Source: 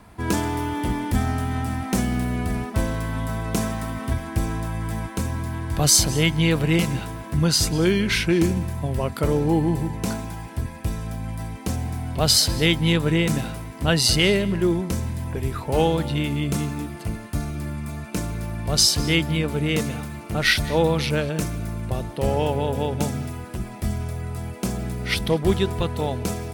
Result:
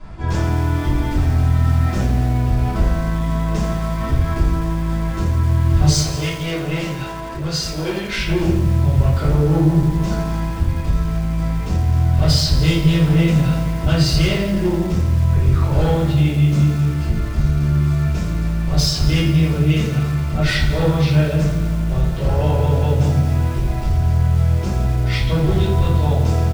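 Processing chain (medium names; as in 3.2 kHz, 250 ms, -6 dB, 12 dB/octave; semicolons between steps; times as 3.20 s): low-pass 7 kHz 24 dB/octave; bass shelf 150 Hz +8 dB; overload inside the chain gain 14.5 dB; peak limiter -21 dBFS, peak gain reduction 6.5 dB; speakerphone echo 240 ms, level -16 dB; saturation -14 dBFS, distortion -34 dB; 5.86–8.18 s: tone controls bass -13 dB, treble 0 dB; simulated room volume 61 m³, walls mixed, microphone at 2.6 m; bit-crushed delay 85 ms, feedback 80%, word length 4-bit, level -14 dB; trim -5 dB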